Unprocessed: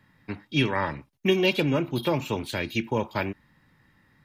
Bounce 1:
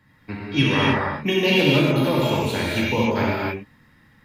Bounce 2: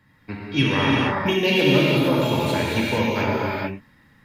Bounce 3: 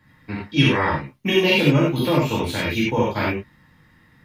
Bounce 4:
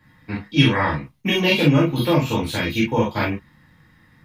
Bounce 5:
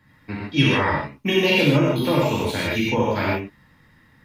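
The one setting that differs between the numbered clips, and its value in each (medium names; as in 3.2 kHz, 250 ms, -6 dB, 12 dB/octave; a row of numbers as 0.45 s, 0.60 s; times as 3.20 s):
gated-style reverb, gate: 330 ms, 490 ms, 120 ms, 80 ms, 180 ms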